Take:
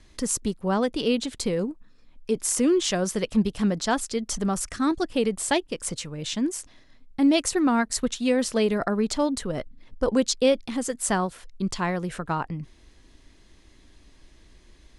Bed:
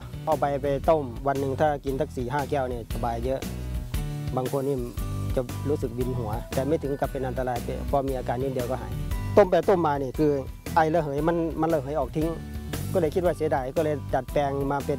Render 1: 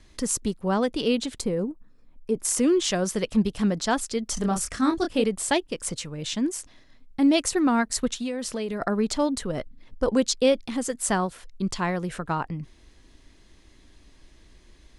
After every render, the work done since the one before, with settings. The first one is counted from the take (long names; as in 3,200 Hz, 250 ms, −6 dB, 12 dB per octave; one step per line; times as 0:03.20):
0:01.41–0:02.45: parametric band 3,900 Hz −11.5 dB 2.4 octaves
0:04.34–0:05.24: double-tracking delay 27 ms −5 dB
0:08.19–0:08.82: downward compressor, threshold −26 dBFS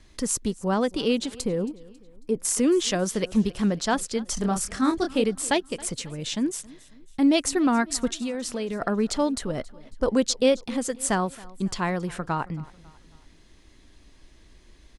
repeating echo 273 ms, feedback 46%, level −22 dB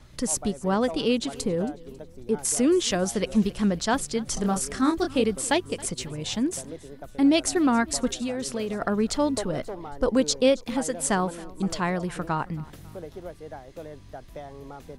mix in bed −15.5 dB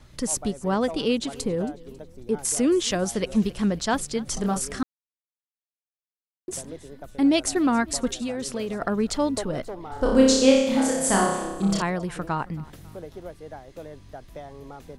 0:04.83–0:06.48: silence
0:09.87–0:11.82: flutter between parallel walls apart 5.2 metres, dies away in 0.91 s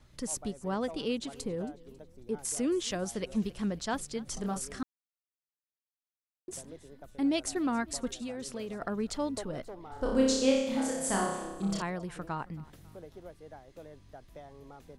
level −9 dB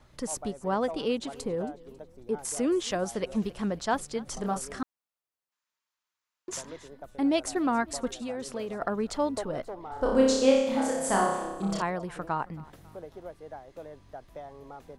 0:05.52–0:06.88: gain on a spectral selection 870–7,600 Hz +9 dB
parametric band 820 Hz +7.5 dB 2.3 octaves